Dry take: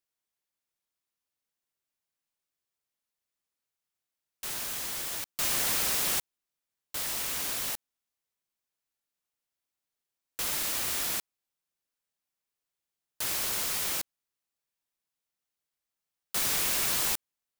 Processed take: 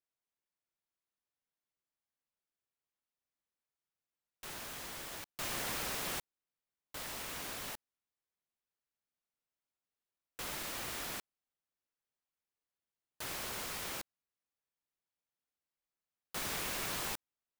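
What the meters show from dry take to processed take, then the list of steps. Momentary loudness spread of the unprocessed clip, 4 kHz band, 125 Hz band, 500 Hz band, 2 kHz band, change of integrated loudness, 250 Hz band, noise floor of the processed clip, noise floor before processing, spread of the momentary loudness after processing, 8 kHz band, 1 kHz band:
9 LU, -9.0 dB, -3.5 dB, -3.5 dB, -6.0 dB, -11.0 dB, -3.5 dB, under -85 dBFS, under -85 dBFS, 9 LU, -12.0 dB, -4.5 dB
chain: high shelf 3400 Hz -10 dB; gain -3.5 dB

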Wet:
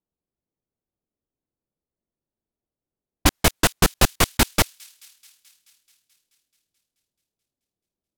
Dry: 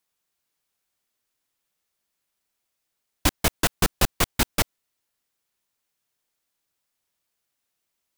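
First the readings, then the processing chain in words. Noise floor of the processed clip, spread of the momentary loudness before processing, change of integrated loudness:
under -85 dBFS, 3 LU, +4.0 dB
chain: low-pass opened by the level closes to 400 Hz, open at -23 dBFS; thin delay 0.216 s, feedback 69%, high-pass 3400 Hz, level -23 dB; gain +4.5 dB

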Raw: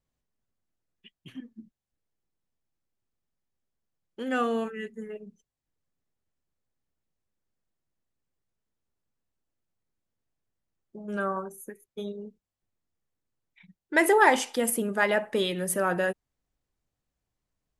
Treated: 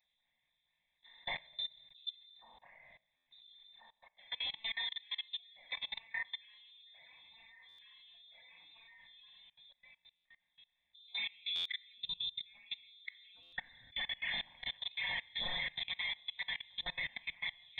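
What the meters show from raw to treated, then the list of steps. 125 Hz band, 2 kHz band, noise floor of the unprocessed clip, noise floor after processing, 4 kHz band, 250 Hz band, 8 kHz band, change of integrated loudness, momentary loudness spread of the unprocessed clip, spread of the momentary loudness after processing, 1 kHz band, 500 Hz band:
n/a, -9.5 dB, under -85 dBFS, -84 dBFS, +4.5 dB, under -30 dB, under -35 dB, -13.5 dB, 23 LU, 21 LU, -23.0 dB, -31.0 dB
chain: per-bin compression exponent 0.6; on a send: echo with dull and thin repeats by turns 0.688 s, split 1100 Hz, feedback 60%, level -5 dB; on the sum: phaser stages 12, 2.1 Hz, lowest notch 120–3000 Hz; HPF 55 Hz 24 dB/oct; reverse; compressor 5:1, threshold -41 dBFS, peak gain reduction 23 dB; reverse; inverted band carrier 3800 Hz; fixed phaser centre 2000 Hz, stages 8; spectral noise reduction 11 dB; shoebox room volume 230 m³, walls mixed, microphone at 0.98 m; level quantiser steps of 23 dB; stuck buffer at 3.16/7.68/10.15/11.55/13.42, samples 512, times 8; gain +8.5 dB

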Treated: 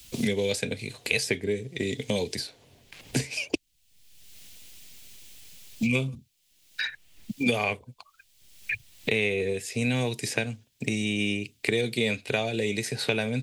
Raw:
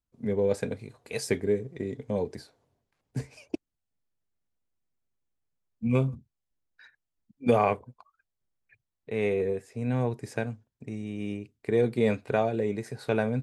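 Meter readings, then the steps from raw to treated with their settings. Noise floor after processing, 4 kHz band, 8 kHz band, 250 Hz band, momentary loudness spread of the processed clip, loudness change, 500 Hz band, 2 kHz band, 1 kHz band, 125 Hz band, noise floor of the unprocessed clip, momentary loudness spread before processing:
-67 dBFS, +15.5 dB, n/a, +1.0 dB, 22 LU, +1.0 dB, -2.0 dB, +10.5 dB, -5.0 dB, -0.5 dB, -85 dBFS, 13 LU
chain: resonant high shelf 1900 Hz +13.5 dB, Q 1.5; three-band squash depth 100%

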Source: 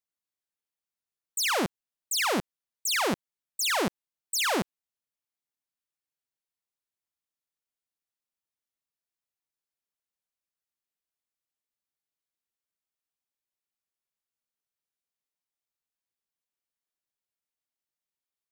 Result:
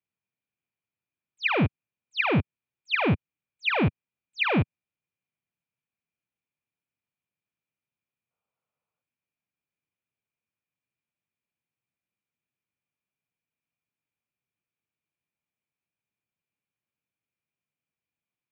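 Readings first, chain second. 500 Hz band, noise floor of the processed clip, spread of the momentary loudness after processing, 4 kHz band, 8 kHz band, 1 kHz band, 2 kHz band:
+1.5 dB, under -85 dBFS, 9 LU, -4.5 dB, under -35 dB, -0.5 dB, +3.5 dB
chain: small resonant body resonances 220/2500 Hz, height 14 dB, ringing for 20 ms; compressor 3:1, threshold -19 dBFS, peak gain reduction 4.5 dB; mistuned SSB -100 Hz 190–3400 Hz; spectral gain 8.31–9.01, 420–1500 Hz +10 dB

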